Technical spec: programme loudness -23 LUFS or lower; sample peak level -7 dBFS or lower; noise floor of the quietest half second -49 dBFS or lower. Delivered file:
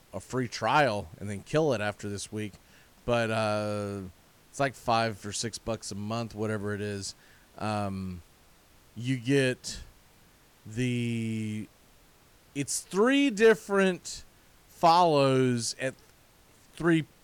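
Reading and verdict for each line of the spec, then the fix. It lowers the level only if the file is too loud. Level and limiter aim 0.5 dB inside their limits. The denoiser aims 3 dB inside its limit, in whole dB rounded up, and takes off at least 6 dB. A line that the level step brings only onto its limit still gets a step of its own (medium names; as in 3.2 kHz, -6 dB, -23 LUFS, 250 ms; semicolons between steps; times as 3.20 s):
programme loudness -28.5 LUFS: pass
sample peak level -12.5 dBFS: pass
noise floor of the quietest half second -59 dBFS: pass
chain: none needed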